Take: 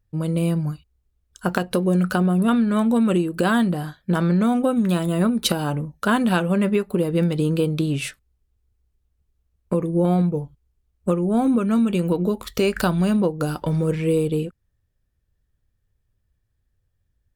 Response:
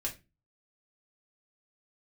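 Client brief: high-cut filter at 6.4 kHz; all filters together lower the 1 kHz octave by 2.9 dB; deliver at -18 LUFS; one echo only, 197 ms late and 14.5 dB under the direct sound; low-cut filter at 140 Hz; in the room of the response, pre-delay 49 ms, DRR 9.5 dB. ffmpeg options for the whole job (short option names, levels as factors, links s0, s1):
-filter_complex "[0:a]highpass=140,lowpass=6400,equalizer=f=1000:t=o:g=-4,aecho=1:1:197:0.188,asplit=2[s0][s1];[1:a]atrim=start_sample=2205,adelay=49[s2];[s1][s2]afir=irnorm=-1:irlink=0,volume=0.266[s3];[s0][s3]amix=inputs=2:normalize=0,volume=1.58"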